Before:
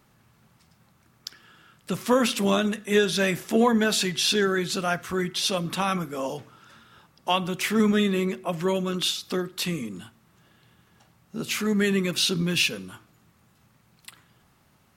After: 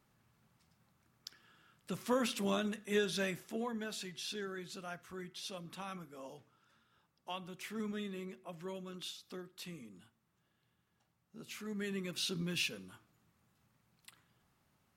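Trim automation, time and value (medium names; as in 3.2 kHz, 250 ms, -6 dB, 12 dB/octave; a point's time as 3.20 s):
3.20 s -12 dB
3.62 s -19.5 dB
11.55 s -19.5 dB
12.37 s -13 dB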